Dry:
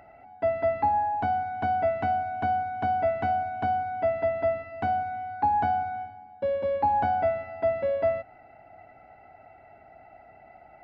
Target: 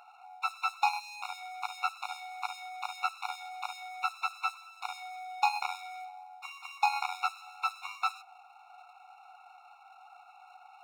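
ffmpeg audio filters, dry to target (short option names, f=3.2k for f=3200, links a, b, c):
-af "aeval=exprs='0.2*(cos(1*acos(clip(val(0)/0.2,-1,1)))-cos(1*PI/2))+0.0355*(cos(8*acos(clip(val(0)/0.2,-1,1)))-cos(8*PI/2))':c=same,aeval=exprs='max(val(0),0)':c=same,afftfilt=real='re*eq(mod(floor(b*sr/1024/720),2),1)':imag='im*eq(mod(floor(b*sr/1024/720),2),1)':win_size=1024:overlap=0.75,volume=6.5dB"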